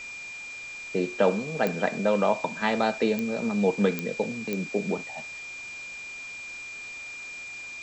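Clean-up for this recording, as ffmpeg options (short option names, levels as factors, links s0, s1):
-af "adeclick=t=4,bandreject=f=2400:w=30,afftdn=nr=30:nf=-40"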